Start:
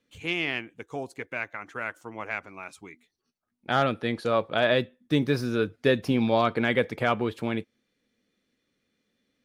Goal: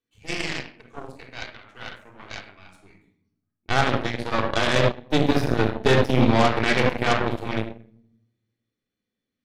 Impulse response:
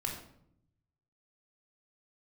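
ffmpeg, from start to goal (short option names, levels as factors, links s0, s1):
-filter_complex "[1:a]atrim=start_sample=2205,asetrate=38808,aresample=44100[s0];[0:a][s0]afir=irnorm=-1:irlink=0,aeval=exprs='0.422*(cos(1*acos(clip(val(0)/0.422,-1,1)))-cos(1*PI/2))+0.075*(cos(6*acos(clip(val(0)/0.422,-1,1)))-cos(6*PI/2))+0.0473*(cos(7*acos(clip(val(0)/0.422,-1,1)))-cos(7*PI/2))':c=same,asplit=3[s1][s2][s3];[s1]afade=t=out:st=2.58:d=0.02[s4];[s2]asubboost=boost=2:cutoff=230,afade=t=in:st=2.58:d=0.02,afade=t=out:st=3.73:d=0.02[s5];[s3]afade=t=in:st=3.73:d=0.02[s6];[s4][s5][s6]amix=inputs=3:normalize=0"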